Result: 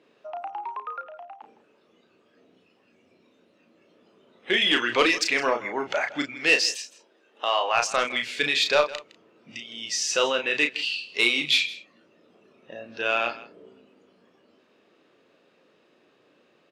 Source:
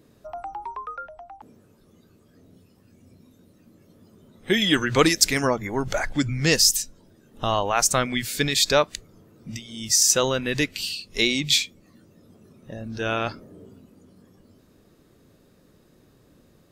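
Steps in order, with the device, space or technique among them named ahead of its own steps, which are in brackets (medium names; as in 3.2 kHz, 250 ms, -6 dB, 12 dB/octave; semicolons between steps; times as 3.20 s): 6.22–7.73 s: high-pass 200 Hz -> 500 Hz 12 dB/octave; intercom (band-pass 420–3600 Hz; peaking EQ 2.7 kHz +8 dB 0.45 oct; saturation -10 dBFS, distortion -17 dB; doubling 34 ms -6 dB); delay 161 ms -17.5 dB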